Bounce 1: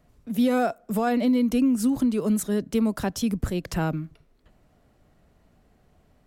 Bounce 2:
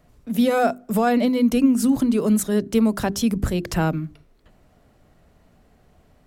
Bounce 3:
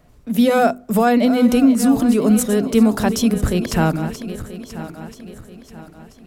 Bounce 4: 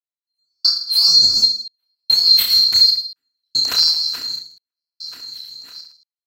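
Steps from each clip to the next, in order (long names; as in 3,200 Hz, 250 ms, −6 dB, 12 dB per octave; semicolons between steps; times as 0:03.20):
mains-hum notches 50/100/150/200/250/300/350/400 Hz; level +5 dB
feedback delay that plays each chunk backwards 492 ms, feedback 63%, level −11.5 dB; level +4 dB
neighbouring bands swapped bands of 4,000 Hz; gate pattern "....xxxxx" 93 BPM −60 dB; reverse bouncing-ball delay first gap 30 ms, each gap 1.2×, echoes 5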